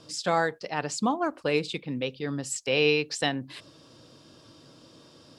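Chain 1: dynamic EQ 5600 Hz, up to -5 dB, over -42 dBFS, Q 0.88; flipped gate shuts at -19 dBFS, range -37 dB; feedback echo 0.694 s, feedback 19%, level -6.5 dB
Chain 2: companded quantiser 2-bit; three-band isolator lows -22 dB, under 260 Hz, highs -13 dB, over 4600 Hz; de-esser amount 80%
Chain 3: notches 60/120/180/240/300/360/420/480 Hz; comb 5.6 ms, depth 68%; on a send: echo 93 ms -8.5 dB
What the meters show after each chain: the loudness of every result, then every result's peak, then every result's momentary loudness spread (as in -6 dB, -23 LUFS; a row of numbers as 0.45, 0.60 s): -37.5, -30.0, -26.5 LUFS; -14.5, -14.5, -9.0 dBFS; 18, 5, 10 LU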